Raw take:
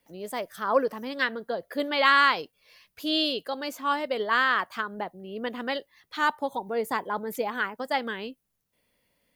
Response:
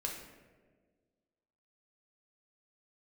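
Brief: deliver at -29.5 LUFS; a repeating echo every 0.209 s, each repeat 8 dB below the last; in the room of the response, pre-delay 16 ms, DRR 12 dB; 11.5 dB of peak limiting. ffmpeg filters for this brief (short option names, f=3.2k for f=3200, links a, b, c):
-filter_complex "[0:a]alimiter=limit=-18.5dB:level=0:latency=1,aecho=1:1:209|418|627|836|1045:0.398|0.159|0.0637|0.0255|0.0102,asplit=2[a][b];[1:a]atrim=start_sample=2205,adelay=16[c];[b][c]afir=irnorm=-1:irlink=0,volume=-13dB[d];[a][d]amix=inputs=2:normalize=0,volume=0.5dB"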